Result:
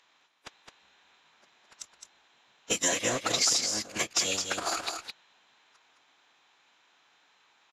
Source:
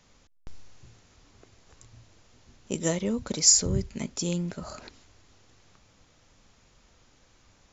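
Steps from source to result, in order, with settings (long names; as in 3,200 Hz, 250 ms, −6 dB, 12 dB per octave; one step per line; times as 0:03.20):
in parallel at −8 dB: wave folding −13.5 dBFS
on the sum: high-pass filter 800 Hz 12 dB per octave
leveller curve on the samples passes 3
phase-vocoder pitch shift with formants kept −10.5 semitones
downward compressor 6 to 1, threshold −29 dBFS, peak gain reduction 19 dB
on a send: single-tap delay 213 ms −6 dB
on the sum: level +4 dB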